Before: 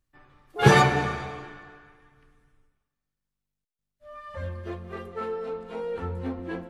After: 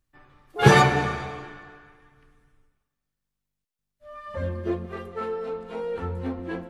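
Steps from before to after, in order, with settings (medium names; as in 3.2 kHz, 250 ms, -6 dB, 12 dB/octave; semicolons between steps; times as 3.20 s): 4.26–4.86 s: peaking EQ 280 Hz +9.5 dB 1.9 oct; trim +1.5 dB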